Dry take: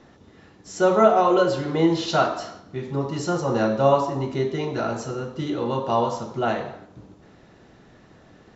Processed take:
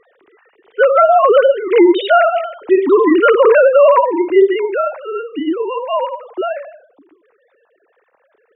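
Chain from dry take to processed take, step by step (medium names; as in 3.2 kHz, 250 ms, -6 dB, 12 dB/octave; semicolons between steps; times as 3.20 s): formants replaced by sine waves; Doppler pass-by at 3.06 s, 6 m/s, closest 2.9 m; loudness maximiser +22.5 dB; trim -1 dB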